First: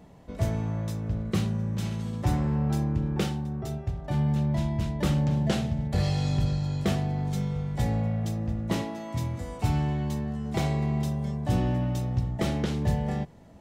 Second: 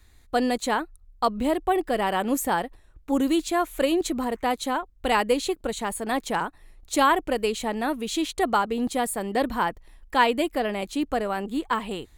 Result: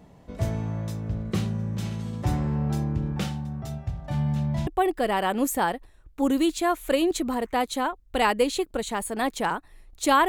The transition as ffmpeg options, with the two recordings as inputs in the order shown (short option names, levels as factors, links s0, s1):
-filter_complex "[0:a]asettb=1/sr,asplit=3[s0][s1][s2];[s0]atrim=end=3.124[s3];[s1]atrim=start=3.12:end=4.67,asetpts=PTS-STARTPTS,afade=t=in:d=0.004:c=qsin,afade=t=out:st=1.546:d=0.004:c=qsin,equalizer=f=390:t=o:w=0.44:g=-12.5[s4];[s2]atrim=start=4.666[s5];[s3][s4]acrossfade=d=0.004:c1=hsin:c2=qsin[s6];[s6][s5]acrossfade=d=0.004:c1=qsin:c2=hsin,apad=whole_dur=10.28,atrim=end=10.28,atrim=end=4.672[s7];[1:a]atrim=start=1.568:end=7.18[s8];[s7][s8]acrossfade=d=0.004:c1=hsin:c2=hsin"